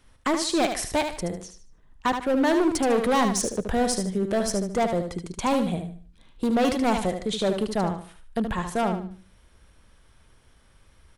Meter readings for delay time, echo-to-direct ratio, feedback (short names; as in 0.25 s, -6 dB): 75 ms, -6.5 dB, 30%